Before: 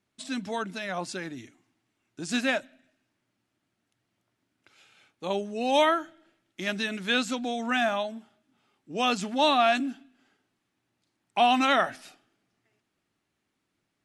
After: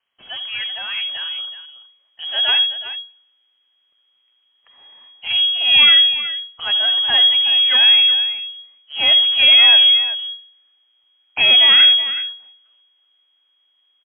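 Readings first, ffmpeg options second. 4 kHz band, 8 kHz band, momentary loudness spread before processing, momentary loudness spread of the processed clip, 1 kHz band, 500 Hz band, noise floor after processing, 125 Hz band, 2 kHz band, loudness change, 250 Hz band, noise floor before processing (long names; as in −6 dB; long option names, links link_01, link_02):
+25.0 dB, below −35 dB, 14 LU, 21 LU, −6.5 dB, −8.0 dB, −64 dBFS, can't be measured, +10.0 dB, +15.5 dB, below −15 dB, −80 dBFS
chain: -filter_complex "[0:a]aeval=exprs='if(lt(val(0),0),0.447*val(0),val(0))':channel_layout=same,equalizer=frequency=220:width=6:gain=-11,acrossover=split=110|1500[link_01][link_02][link_03];[link_01]alimiter=level_in=13dB:limit=-24dB:level=0:latency=1,volume=-13dB[link_04];[link_04][link_02][link_03]amix=inputs=3:normalize=0,asubboost=boost=8.5:cutoff=88,acrusher=bits=6:mode=log:mix=0:aa=0.000001,aecho=1:1:71|84|373:0.119|0.178|0.237,lowpass=frequency=2800:width_type=q:width=0.5098,lowpass=frequency=2800:width_type=q:width=0.6013,lowpass=frequency=2800:width_type=q:width=0.9,lowpass=frequency=2800:width_type=q:width=2.563,afreqshift=-3300,volume=6.5dB" -ar 48000 -c:a libopus -b:a 64k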